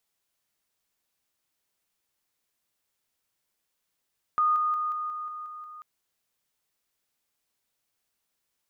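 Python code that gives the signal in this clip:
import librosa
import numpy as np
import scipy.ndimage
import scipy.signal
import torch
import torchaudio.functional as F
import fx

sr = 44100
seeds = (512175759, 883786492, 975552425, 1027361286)

y = fx.level_ladder(sr, hz=1230.0, from_db=-20.0, step_db=-3.0, steps=8, dwell_s=0.18, gap_s=0.0)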